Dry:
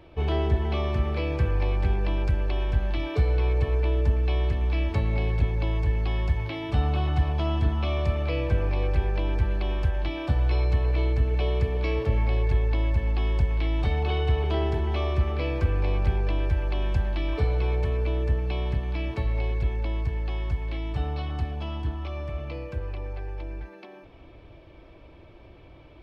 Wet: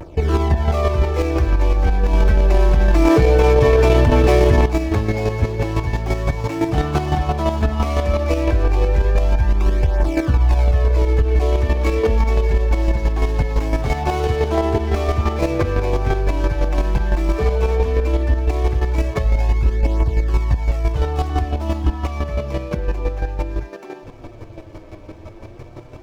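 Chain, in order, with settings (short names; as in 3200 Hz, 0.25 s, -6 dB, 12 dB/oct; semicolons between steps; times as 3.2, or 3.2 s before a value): median filter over 15 samples; flange 0.1 Hz, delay 0.1 ms, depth 9.7 ms, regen -9%; vibrato 0.35 Hz 22 cents; chopper 5.9 Hz, depth 60%, duty 20%; dynamic EQ 110 Hz, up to -7 dB, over -43 dBFS, Q 0.77; maximiser +27.5 dB; 2.13–4.66 fast leveller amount 100%; gain -6.5 dB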